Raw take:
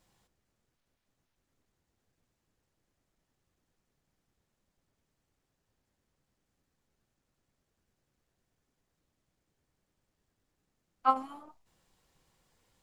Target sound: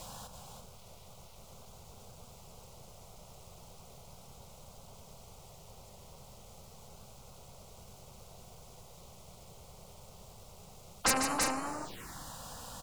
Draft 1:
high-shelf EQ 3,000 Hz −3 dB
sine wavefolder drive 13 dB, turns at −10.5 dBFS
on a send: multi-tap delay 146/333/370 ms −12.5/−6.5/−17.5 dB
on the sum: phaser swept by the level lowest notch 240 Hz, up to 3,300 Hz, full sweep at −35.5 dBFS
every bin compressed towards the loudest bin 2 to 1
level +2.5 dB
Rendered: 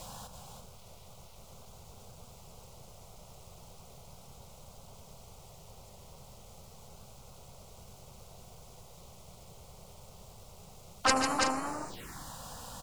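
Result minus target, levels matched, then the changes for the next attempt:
sine wavefolder: distortion −4 dB
change: sine wavefolder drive 13 dB, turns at −17.5 dBFS

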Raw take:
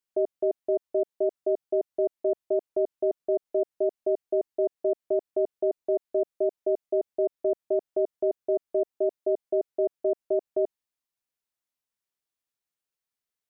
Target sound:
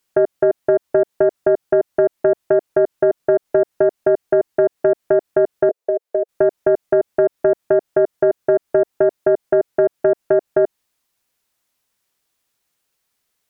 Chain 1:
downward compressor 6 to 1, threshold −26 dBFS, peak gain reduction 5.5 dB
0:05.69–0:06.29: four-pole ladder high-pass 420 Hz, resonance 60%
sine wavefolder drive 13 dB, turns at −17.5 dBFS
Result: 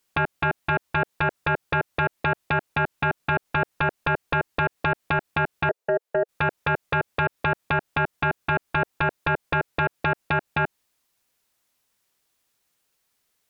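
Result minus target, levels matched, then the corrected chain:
sine wavefolder: distortion +29 dB
downward compressor 6 to 1, threshold −26 dBFS, peak gain reduction 5.5 dB
0:05.69–0:06.29: four-pole ladder high-pass 420 Hz, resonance 60%
sine wavefolder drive 13 dB, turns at −7.5 dBFS

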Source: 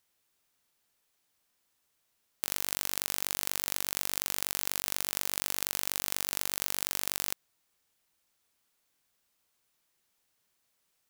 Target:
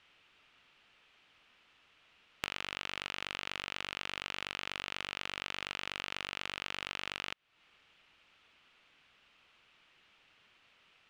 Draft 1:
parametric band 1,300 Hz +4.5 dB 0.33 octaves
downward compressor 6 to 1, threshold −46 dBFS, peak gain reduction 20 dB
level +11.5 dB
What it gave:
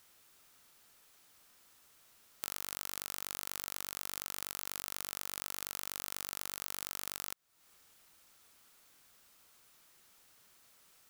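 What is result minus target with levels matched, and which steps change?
2,000 Hz band −9.0 dB
add first: low-pass with resonance 2,800 Hz, resonance Q 2.8

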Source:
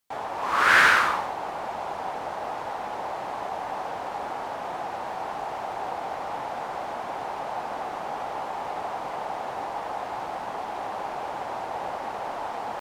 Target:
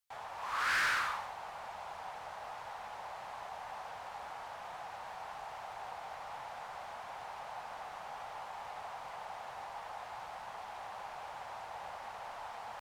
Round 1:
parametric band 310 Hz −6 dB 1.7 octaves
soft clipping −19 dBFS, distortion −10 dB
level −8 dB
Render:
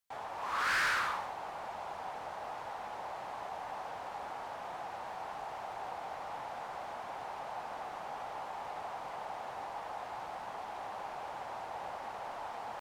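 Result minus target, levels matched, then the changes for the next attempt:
250 Hz band +6.0 dB
change: parametric band 310 Hz −17 dB 1.7 octaves

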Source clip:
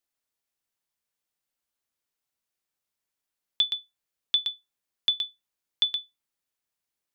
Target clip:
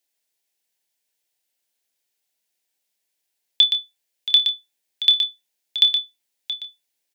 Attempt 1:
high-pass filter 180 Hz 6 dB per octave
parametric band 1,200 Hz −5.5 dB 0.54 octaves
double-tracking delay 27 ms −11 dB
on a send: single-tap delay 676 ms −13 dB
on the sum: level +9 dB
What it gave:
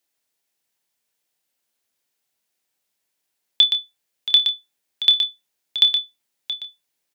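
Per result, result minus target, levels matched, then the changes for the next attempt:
250 Hz band +4.5 dB; 1,000 Hz band +4.5 dB
change: high-pass filter 500 Hz 6 dB per octave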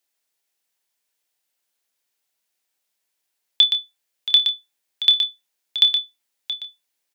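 1,000 Hz band +3.5 dB
change: parametric band 1,200 Hz −15 dB 0.54 octaves

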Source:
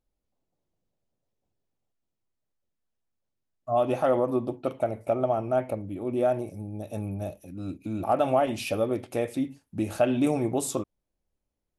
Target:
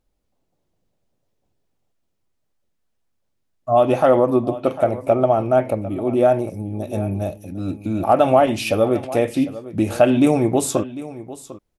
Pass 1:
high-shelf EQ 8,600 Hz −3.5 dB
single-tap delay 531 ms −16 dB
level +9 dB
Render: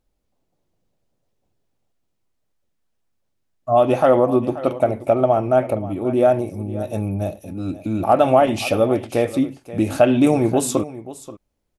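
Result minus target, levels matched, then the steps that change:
echo 219 ms early
change: single-tap delay 750 ms −16 dB

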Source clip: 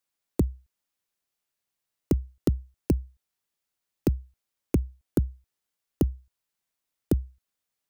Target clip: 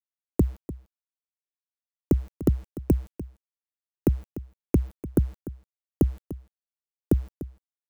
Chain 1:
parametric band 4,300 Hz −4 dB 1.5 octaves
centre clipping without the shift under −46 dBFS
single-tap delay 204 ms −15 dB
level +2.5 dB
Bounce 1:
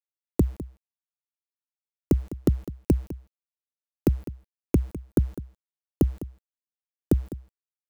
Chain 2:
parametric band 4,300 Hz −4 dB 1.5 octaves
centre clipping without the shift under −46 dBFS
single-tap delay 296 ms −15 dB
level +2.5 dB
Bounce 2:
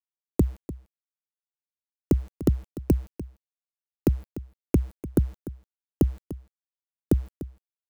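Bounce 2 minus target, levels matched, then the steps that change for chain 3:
4,000 Hz band +4.5 dB
change: parametric band 4,300 Hz −11 dB 1.5 octaves

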